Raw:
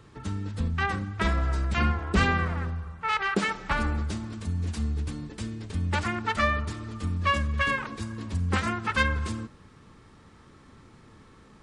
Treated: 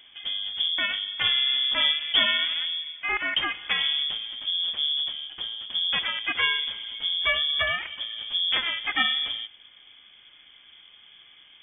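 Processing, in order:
voice inversion scrambler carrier 3,400 Hz

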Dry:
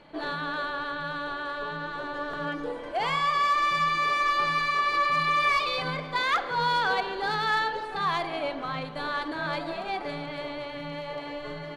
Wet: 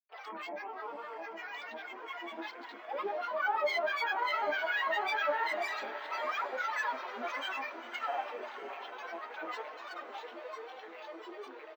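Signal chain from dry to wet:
loose part that buzzes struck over −40 dBFS, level −26 dBFS
Butterworth high-pass 350 Hz 96 dB per octave
three-way crossover with the lows and the highs turned down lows −16 dB, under 460 Hz, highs −15 dB, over 2,500 Hz
comb filter 5.1 ms, depth 85%
flanger 1.5 Hz, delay 2.5 ms, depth 7.4 ms, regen +70%
granular cloud, pitch spread up and down by 12 semitones
feedback delay with all-pass diffusion 661 ms, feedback 57%, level −12 dB
on a send at −10.5 dB: convolution reverb RT60 0.30 s, pre-delay 3 ms
on the sum: linearly interpolated sample-rate reduction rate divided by 2×
level −6 dB

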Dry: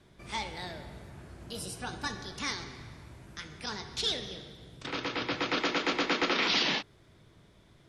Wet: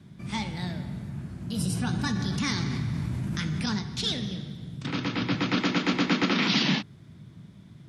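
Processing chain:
high-pass filter 120 Hz 12 dB per octave
low shelf with overshoot 290 Hz +13 dB, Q 1.5
0:01.59–0:03.79: envelope flattener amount 70%
level +1.5 dB

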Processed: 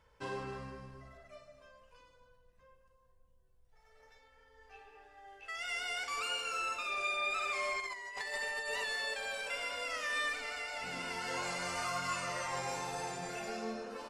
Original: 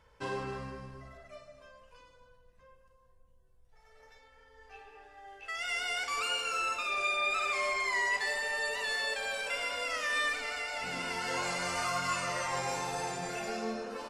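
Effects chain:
0:07.80–0:08.84: compressor whose output falls as the input rises −35 dBFS, ratio −0.5
level −4 dB

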